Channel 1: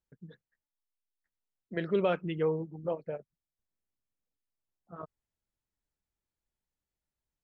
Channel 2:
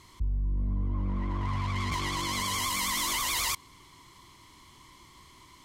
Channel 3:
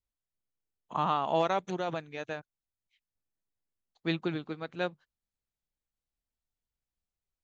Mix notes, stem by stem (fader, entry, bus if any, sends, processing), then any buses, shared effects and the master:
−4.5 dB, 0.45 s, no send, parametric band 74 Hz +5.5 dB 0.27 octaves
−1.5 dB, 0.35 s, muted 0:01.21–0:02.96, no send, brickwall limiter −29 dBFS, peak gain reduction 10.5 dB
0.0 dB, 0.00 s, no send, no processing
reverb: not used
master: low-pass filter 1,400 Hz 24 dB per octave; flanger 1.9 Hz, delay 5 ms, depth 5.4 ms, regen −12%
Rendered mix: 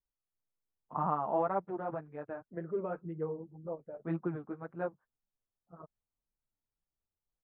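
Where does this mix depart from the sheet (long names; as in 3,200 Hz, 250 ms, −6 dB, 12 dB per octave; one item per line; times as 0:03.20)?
stem 1: entry 0.45 s → 0.80 s
stem 2: muted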